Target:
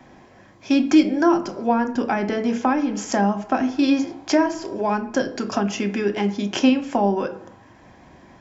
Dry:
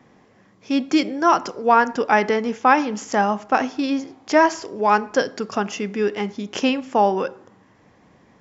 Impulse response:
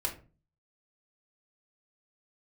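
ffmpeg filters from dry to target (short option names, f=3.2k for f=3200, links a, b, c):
-filter_complex "[0:a]acrossover=split=350[a][b];[b]acompressor=threshold=-29dB:ratio=6[c];[a][c]amix=inputs=2:normalize=0,asplit=2[d][e];[1:a]atrim=start_sample=2205[f];[e][f]afir=irnorm=-1:irlink=0,volume=-3.5dB[g];[d][g]amix=inputs=2:normalize=0,volume=1.5dB"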